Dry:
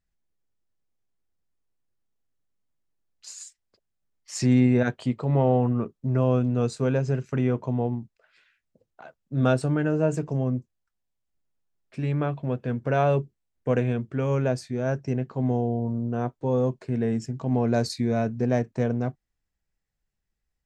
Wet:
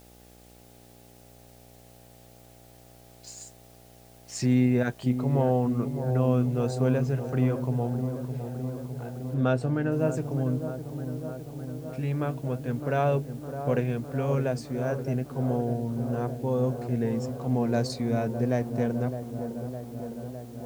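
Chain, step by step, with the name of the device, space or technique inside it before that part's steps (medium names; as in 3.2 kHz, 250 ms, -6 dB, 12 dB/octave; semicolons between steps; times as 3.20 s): video cassette with head-switching buzz (mains buzz 60 Hz, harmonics 14, -51 dBFS -3 dB/octave; white noise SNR 29 dB); 9.34–9.92 s: treble shelf 5.6 kHz -9.5 dB; feedback echo behind a low-pass 609 ms, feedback 73%, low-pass 1.1 kHz, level -9 dB; trim -3 dB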